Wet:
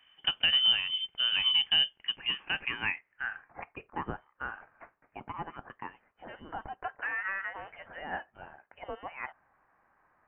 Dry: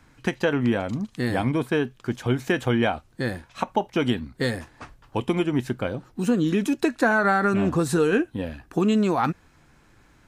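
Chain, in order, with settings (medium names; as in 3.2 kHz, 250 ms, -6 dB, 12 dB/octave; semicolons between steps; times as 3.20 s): high-pass sweep 270 Hz -> 2.3 kHz, 1.74–3.59 s; frequency inversion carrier 3.3 kHz; trim -7.5 dB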